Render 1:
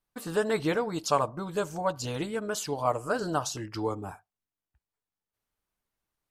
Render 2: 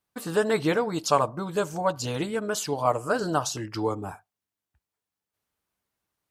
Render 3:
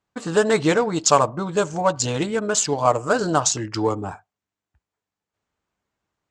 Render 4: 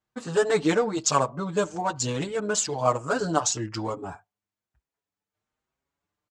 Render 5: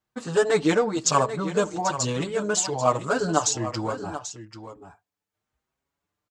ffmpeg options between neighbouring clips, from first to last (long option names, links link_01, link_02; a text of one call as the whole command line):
ffmpeg -i in.wav -af "highpass=66,volume=3.5dB" out.wav
ffmpeg -i in.wav -af "adynamicsmooth=sensitivity=6.5:basefreq=3200,lowpass=frequency=7400:width_type=q:width=4.2,volume=5.5dB" out.wav
ffmpeg -i in.wav -filter_complex "[0:a]asplit=2[link_01][link_02];[link_02]adelay=6.1,afreqshift=1.1[link_03];[link_01][link_03]amix=inputs=2:normalize=1,volume=-2dB" out.wav
ffmpeg -i in.wav -af "aecho=1:1:788:0.251,volume=1.5dB" out.wav